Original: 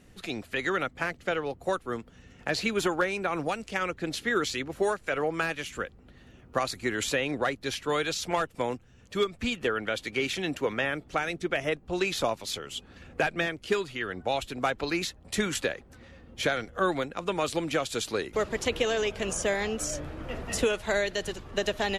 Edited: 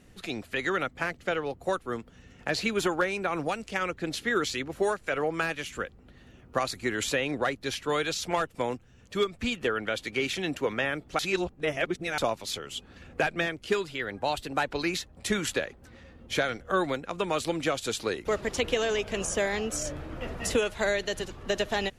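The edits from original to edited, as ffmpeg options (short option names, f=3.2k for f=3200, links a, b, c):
-filter_complex "[0:a]asplit=5[a][b][c][d][e];[a]atrim=end=11.192[f];[b]atrim=start=11.188:end=12.182,asetpts=PTS-STARTPTS,areverse[g];[c]atrim=start=12.178:end=13.864[h];[d]atrim=start=13.86:end=14.81,asetpts=PTS-STARTPTS,asetrate=48069,aresample=44100[i];[e]atrim=start=14.806[j];[f][g]acrossfade=d=0.004:c1=hsin:c2=hsin[k];[k][h]acrossfade=d=0.004:c1=hsin:c2=hsin[l];[l][i]acrossfade=d=0.004:c1=hsin:c2=hsin[m];[m][j]acrossfade=d=0.004:c1=hsin:c2=hsin"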